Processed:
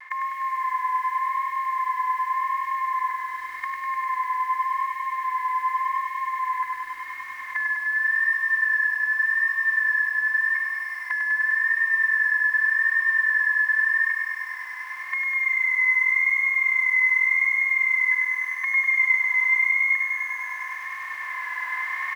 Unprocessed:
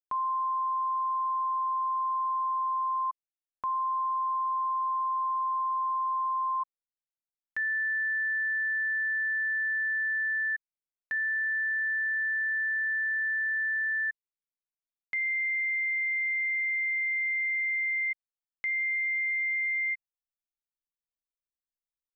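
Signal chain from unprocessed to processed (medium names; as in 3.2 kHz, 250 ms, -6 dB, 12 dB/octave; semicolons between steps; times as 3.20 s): spectral levelling over time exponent 0.2; recorder AGC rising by 5.2 dB/s; high-pass 1 kHz 12 dB/octave; dynamic bell 1.6 kHz, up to +3 dB, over -42 dBFS, Q 0.85; vibrato 0.87 Hz 45 cents; 18.71–19.58 s: doubling 34 ms -2 dB; feedback delay 76 ms, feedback 42%, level -15 dB; bit-crushed delay 100 ms, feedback 80%, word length 9-bit, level -5 dB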